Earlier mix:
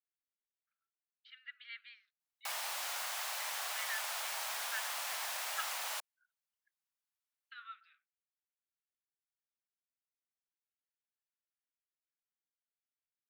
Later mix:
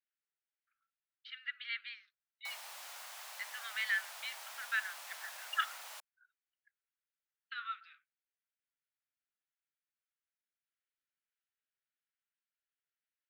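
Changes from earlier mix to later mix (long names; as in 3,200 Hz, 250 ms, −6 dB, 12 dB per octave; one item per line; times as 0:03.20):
speech +8.5 dB
background −9.5 dB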